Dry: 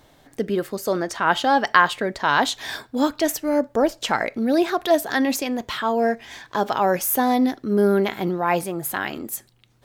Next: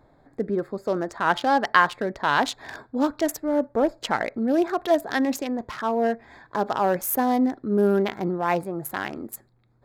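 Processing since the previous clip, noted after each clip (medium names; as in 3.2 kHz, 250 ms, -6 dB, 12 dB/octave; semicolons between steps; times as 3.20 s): local Wiener filter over 15 samples; trim -2 dB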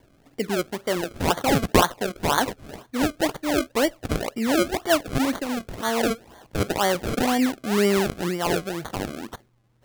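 decimation with a swept rate 33×, swing 100% 2 Hz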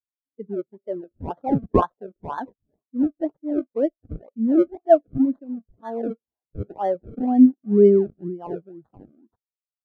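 spectral contrast expander 2.5:1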